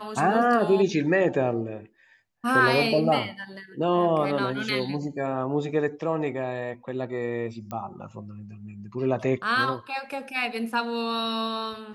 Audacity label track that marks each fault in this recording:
7.710000	7.710000	pop -22 dBFS

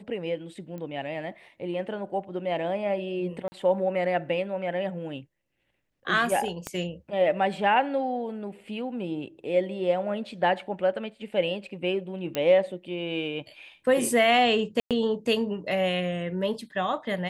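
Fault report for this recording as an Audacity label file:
0.780000	0.780000	pop -27 dBFS
3.480000	3.520000	dropout 40 ms
6.670000	6.670000	pop -16 dBFS
12.350000	12.350000	pop -13 dBFS
14.800000	14.910000	dropout 107 ms

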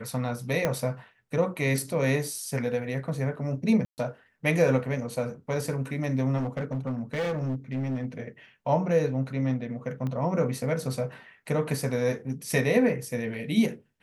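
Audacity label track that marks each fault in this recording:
0.650000	0.650000	pop -11 dBFS
3.850000	3.980000	dropout 129 ms
6.370000	8.060000	clipped -25.5 dBFS
10.070000	10.070000	pop -22 dBFS

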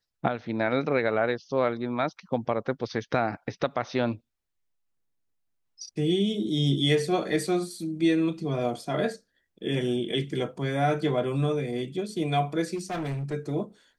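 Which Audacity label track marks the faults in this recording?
12.750000	13.340000	clipped -28 dBFS

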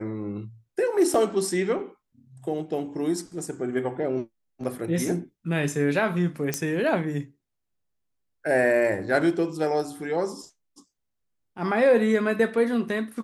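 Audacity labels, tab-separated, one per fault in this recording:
1.140000	1.140000	dropout 3.5 ms
6.540000	6.540000	pop -10 dBFS

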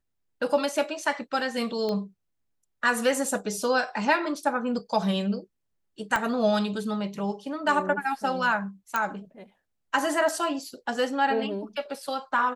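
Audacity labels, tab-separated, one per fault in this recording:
1.890000	1.890000	pop -19 dBFS
6.160000	6.160000	pop -12 dBFS
8.960000	8.960000	pop -12 dBFS

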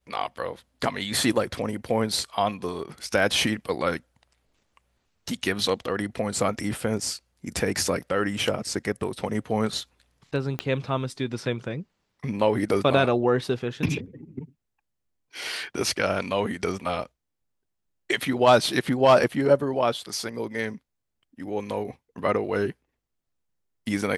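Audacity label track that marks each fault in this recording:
10.590000	10.590000	pop -13 dBFS

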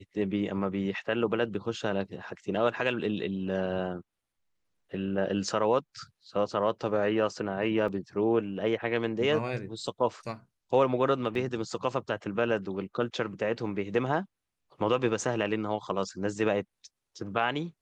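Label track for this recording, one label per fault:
7.880000	7.880000	dropout 3.2 ms
11.350000	11.350000	dropout 2.4 ms

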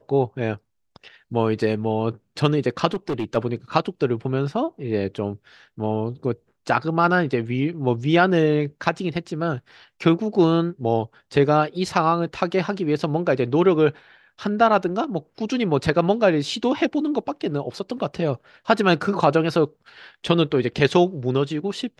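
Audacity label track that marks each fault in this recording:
2.930000	3.370000	clipped -20.5 dBFS

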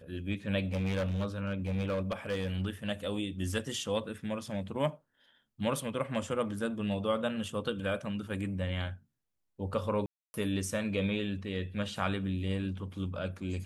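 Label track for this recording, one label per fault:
0.720000	2.500000	clipped -28 dBFS
10.060000	10.340000	dropout 280 ms

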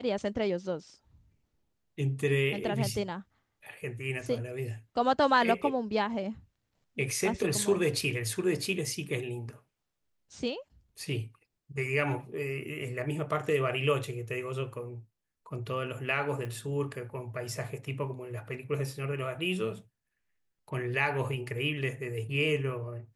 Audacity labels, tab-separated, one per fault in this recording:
16.450000	16.450000	pop -27 dBFS

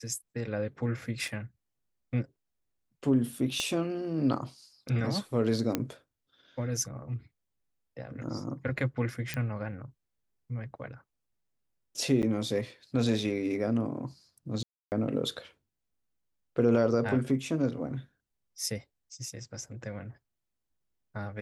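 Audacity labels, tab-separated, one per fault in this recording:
1.280000	1.280000	dropout 2.7 ms
3.600000	3.600000	pop -17 dBFS
5.750000	5.750000	pop -13 dBFS
9.340000	9.340000	pop -17 dBFS
12.220000	12.230000	dropout 9 ms
14.630000	14.920000	dropout 289 ms

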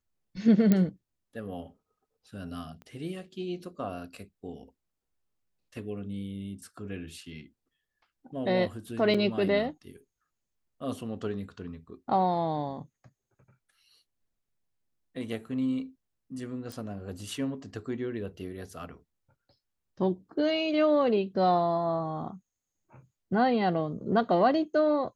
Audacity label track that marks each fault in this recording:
0.720000	0.720000	pop -11 dBFS
2.820000	2.820000	pop -34 dBFS
9.140000	9.150000	dropout 5.6 ms
16.720000	16.720000	pop

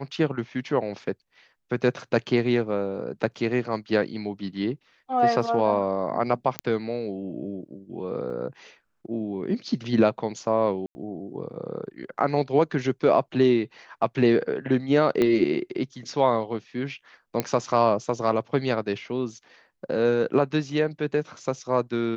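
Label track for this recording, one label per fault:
6.590000	6.590000	pop -9 dBFS
8.300000	8.300000	dropout 2.1 ms
10.860000	10.950000	dropout 90 ms
15.220000	15.220000	pop -11 dBFS
17.400000	17.400000	pop -9 dBFS

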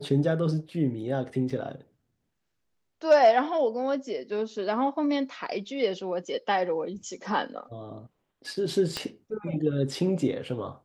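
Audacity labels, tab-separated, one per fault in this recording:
1.500000	1.500000	dropout 3.9 ms
8.970000	8.970000	pop -15 dBFS

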